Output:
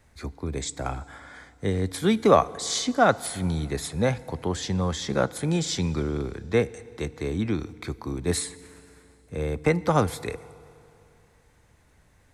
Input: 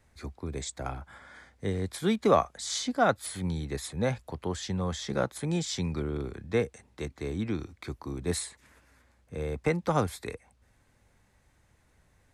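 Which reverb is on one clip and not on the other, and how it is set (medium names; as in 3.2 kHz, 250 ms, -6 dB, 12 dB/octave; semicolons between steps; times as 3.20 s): FDN reverb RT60 2.8 s, high-frequency decay 0.85×, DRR 18 dB; trim +5 dB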